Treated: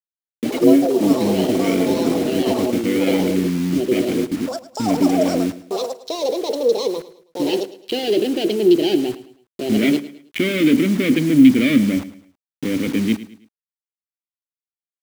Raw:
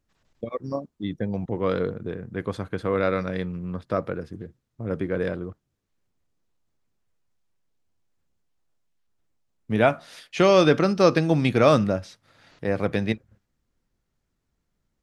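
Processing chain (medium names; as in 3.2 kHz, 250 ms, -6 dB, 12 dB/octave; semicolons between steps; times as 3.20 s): local Wiener filter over 25 samples; treble shelf 5.5 kHz -11.5 dB; waveshaping leveller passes 5; in parallel at +0.5 dB: peak limiter -13 dBFS, peak gain reduction 8 dB; on the sum: upward compressor, threshold -17 dBFS; vowel filter i; bit crusher 6-bit; ever faster or slower copies 133 ms, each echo +5 st, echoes 3; on a send: feedback delay 107 ms, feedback 37%, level -16 dB; on the sum: trim +2.5 dB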